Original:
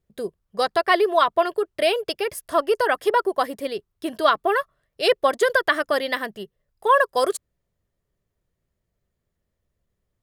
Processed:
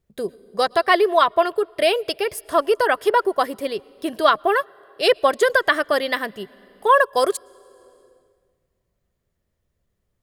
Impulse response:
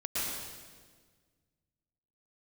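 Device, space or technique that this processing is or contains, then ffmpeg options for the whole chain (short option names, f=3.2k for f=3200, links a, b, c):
compressed reverb return: -filter_complex "[0:a]asettb=1/sr,asplit=3[a][b][c];[a]atrim=end=4.604[d];[b]atrim=start=4.6:end=5.14,asetpts=PTS-STARTPTS,afade=t=in:d=0.004:c=qsin,afade=t=out:st=0.536:d=0.004:c=qsin,highpass=120[e];[c]atrim=start=5.136[f];[d][e]acrossfade=d=0.004:c1=hsin:c2=qsin[g];[g][f]acrossfade=d=0.004:c1=qsin:c2=hsin,asplit=2[h][i];[1:a]atrim=start_sample=2205[j];[i][j]afir=irnorm=-1:irlink=0,acompressor=threshold=-28dB:ratio=10,volume=-19dB[k];[h][k]amix=inputs=2:normalize=0,volume=2dB"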